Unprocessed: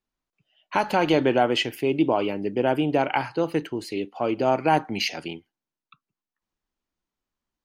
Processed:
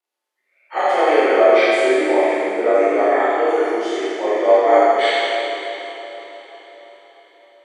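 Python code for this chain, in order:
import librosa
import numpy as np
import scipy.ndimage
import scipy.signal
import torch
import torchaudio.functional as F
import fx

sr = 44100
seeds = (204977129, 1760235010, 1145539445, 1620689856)

y = fx.partial_stretch(x, sr, pct=89)
y = scipy.signal.sosfilt(scipy.signal.butter(6, 360.0, 'highpass', fs=sr, output='sos'), y)
y = fx.echo_diffused(y, sr, ms=583, feedback_pct=45, wet_db=-15.0)
y = fx.rev_schroeder(y, sr, rt60_s=2.3, comb_ms=26, drr_db=-8.5)
y = F.gain(torch.from_numpy(y), 2.0).numpy()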